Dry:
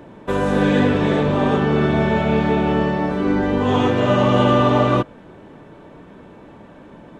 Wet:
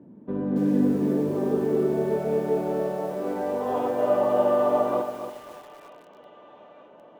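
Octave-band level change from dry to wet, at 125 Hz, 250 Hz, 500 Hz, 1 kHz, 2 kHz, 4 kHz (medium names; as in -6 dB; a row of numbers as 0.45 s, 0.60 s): -14.0 dB, -8.0 dB, -4.0 dB, -9.0 dB, -18.0 dB, under -20 dB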